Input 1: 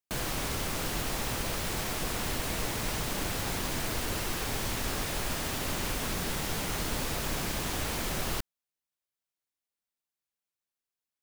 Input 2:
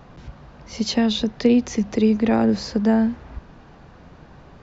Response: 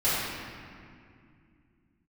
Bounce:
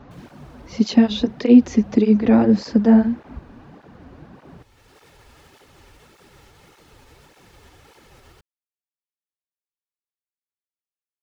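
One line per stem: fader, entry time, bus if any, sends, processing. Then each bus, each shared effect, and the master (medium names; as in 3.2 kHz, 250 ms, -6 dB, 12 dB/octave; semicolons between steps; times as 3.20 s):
-12.0 dB, 0.00 s, no send, comb 2.3 ms, depth 39%; peak limiter -23 dBFS, peak gain reduction 4.5 dB; auto duck -17 dB, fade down 1.40 s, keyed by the second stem
+3.0 dB, 0.00 s, no send, peaking EQ 270 Hz +6 dB 1.1 oct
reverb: none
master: low-pass 3.8 kHz 6 dB/octave; cancelling through-zero flanger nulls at 1.7 Hz, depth 6.7 ms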